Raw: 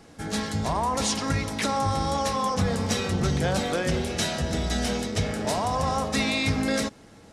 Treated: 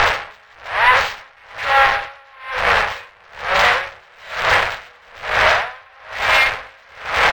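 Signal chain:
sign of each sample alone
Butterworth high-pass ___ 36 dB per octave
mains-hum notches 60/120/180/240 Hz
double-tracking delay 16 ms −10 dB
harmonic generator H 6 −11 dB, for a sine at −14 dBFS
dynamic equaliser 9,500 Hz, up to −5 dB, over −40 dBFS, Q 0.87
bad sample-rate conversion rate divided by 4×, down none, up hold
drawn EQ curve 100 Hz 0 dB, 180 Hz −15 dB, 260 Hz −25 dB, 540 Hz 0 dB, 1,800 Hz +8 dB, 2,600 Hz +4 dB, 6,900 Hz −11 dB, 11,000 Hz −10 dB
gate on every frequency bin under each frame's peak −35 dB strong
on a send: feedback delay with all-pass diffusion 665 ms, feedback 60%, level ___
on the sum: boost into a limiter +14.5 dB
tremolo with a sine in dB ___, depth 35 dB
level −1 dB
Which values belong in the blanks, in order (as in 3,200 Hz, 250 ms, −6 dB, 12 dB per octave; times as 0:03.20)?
190 Hz, −10 dB, 1.1 Hz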